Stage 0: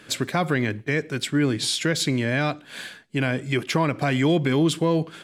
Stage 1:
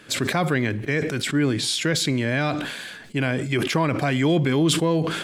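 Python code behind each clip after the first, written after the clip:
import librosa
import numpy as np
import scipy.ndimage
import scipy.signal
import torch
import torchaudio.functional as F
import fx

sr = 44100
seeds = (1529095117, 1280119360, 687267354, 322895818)

y = fx.sustainer(x, sr, db_per_s=44.0)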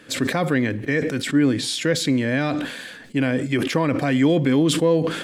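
y = fx.small_body(x, sr, hz=(270.0, 500.0, 1800.0), ring_ms=45, db=8)
y = y * 10.0 ** (-1.5 / 20.0)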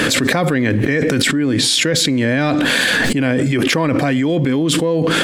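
y = fx.env_flatten(x, sr, amount_pct=100)
y = y * 10.0 ** (-1.5 / 20.0)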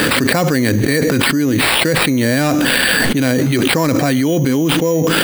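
y = fx.sample_hold(x, sr, seeds[0], rate_hz=6300.0, jitter_pct=0)
y = y * 10.0 ** (1.5 / 20.0)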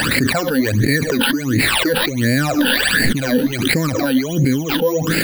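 y = fx.phaser_stages(x, sr, stages=12, low_hz=110.0, high_hz=1100.0, hz=1.4, feedback_pct=45)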